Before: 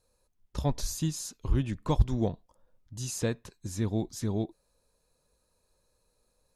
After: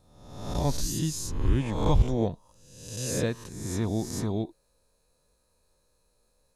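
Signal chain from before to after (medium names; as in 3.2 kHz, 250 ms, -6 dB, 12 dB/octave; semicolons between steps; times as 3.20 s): reverse spectral sustain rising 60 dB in 0.92 s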